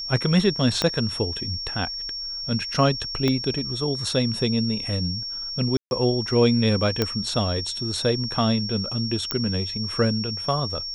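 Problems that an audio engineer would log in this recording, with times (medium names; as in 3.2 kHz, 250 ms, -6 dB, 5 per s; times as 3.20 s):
whine 5.5 kHz -29 dBFS
0.82 s: pop -8 dBFS
3.28 s: pop -10 dBFS
5.77–5.91 s: dropout 141 ms
7.02 s: pop -7 dBFS
9.31 s: pop -7 dBFS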